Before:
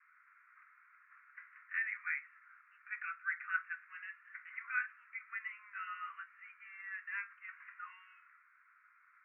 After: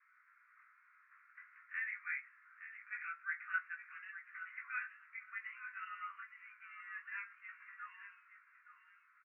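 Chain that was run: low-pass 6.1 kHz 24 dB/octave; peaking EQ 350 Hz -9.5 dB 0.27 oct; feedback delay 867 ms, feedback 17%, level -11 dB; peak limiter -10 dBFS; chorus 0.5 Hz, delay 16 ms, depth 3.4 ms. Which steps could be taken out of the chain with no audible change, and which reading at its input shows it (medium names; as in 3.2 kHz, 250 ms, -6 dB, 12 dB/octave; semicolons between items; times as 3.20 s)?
low-pass 6.1 kHz: input has nothing above 2.9 kHz; peaking EQ 350 Hz: input has nothing below 1 kHz; peak limiter -10 dBFS: peak at its input -23.0 dBFS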